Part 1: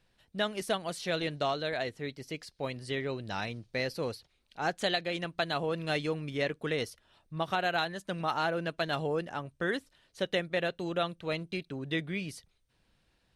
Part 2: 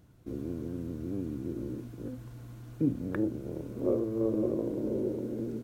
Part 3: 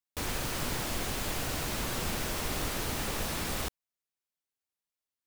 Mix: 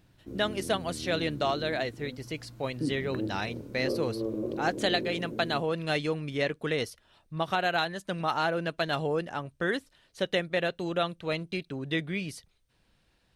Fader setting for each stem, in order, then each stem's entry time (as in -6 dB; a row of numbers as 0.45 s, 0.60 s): +2.5 dB, -3.5 dB, mute; 0.00 s, 0.00 s, mute